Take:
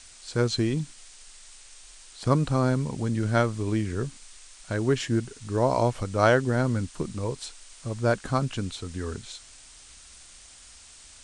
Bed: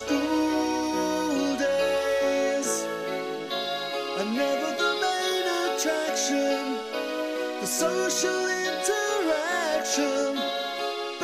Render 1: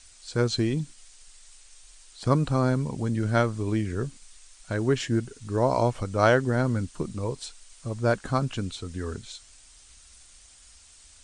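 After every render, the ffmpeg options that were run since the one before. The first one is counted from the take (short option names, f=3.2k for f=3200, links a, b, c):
-af "afftdn=nr=6:nf=-50"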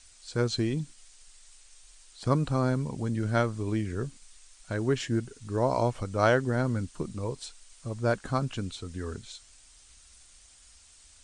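-af "volume=-3dB"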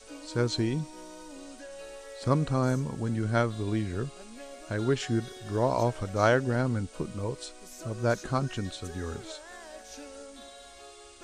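-filter_complex "[1:a]volume=-20dB[a];[0:a][a]amix=inputs=2:normalize=0"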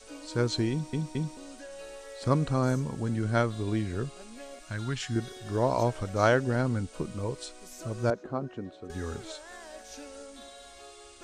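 -filter_complex "[0:a]asettb=1/sr,asplit=3[a][b][c];[a]atrim=end=4.594[d];[b]atrim=start=4.59:end=5.16,asetpts=PTS-STARTPTS,afade=t=in:d=0.004:c=qsin,afade=t=out:st=0.566:d=0.004:c=qsin,equalizer=f=440:w=1:g=-14.5[e];[c]atrim=start=5.156[f];[d][e]acrossfade=d=0.004:c1=hsin:c2=qsin[g];[g][f]acrossfade=d=0.004:c1=qsin:c2=hsin,asettb=1/sr,asplit=3[h][i][j];[h]atrim=end=8.104[k];[i]atrim=start=8.1:end=8.9,asetpts=PTS-STARTPTS,afade=t=in:d=0.004:c=qsin,afade=t=out:st=0.796:d=0.004:c=qsin,bandpass=f=420:t=q:w=0.87[l];[j]atrim=start=8.896[m];[k][l]acrossfade=d=0.004:c1=hsin:c2=qsin[n];[n][m]acrossfade=d=0.004:c1=qsin:c2=hsin,asplit=4[o][p][q][r];[o]atrim=end=0.932[s];[p]atrim=start=0.708:end=0.932[t];[q]atrim=start=0.708:end=0.932[u];[r]atrim=start=1.368[v];[s][t]acrossfade=d=0.004:c1=hsin:c2=hsin[w];[w][u]acrossfade=d=0.004:c1=hsin:c2=hsin[x];[x][v]acrossfade=d=0.004:c1=hsin:c2=hsin"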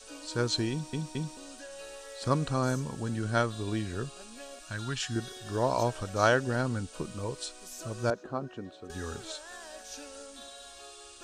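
-af "tiltshelf=f=970:g=-3.5,bandreject=f=2.1k:w=6.3"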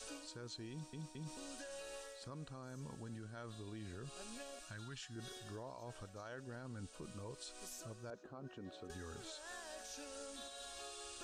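-af "areverse,acompressor=threshold=-39dB:ratio=8,areverse,alimiter=level_in=16dB:limit=-24dB:level=0:latency=1:release=265,volume=-16dB"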